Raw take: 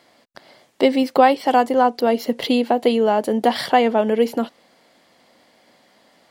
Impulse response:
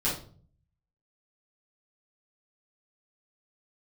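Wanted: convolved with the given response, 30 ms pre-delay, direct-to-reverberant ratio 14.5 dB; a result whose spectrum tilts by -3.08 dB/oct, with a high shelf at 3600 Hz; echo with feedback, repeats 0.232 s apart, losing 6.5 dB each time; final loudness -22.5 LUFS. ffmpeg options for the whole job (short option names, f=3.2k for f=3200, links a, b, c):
-filter_complex "[0:a]highshelf=f=3.6k:g=-4,aecho=1:1:232|464|696|928|1160|1392:0.473|0.222|0.105|0.0491|0.0231|0.0109,asplit=2[a][b];[1:a]atrim=start_sample=2205,adelay=30[c];[b][c]afir=irnorm=-1:irlink=0,volume=-23dB[d];[a][d]amix=inputs=2:normalize=0,volume=-5.5dB"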